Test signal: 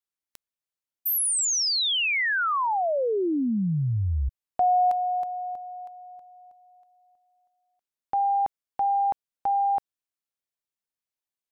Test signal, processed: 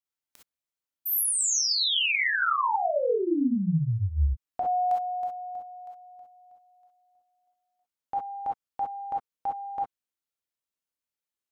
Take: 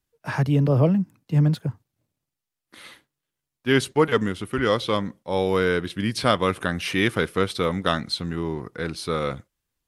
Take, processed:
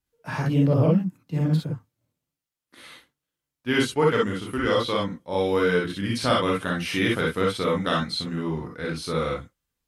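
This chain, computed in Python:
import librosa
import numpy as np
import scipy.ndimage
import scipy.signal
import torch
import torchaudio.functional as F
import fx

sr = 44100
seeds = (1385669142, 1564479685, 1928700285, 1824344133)

y = fx.rev_gated(x, sr, seeds[0], gate_ms=80, shape='rising', drr_db=-2.0)
y = y * librosa.db_to_amplitude(-5.0)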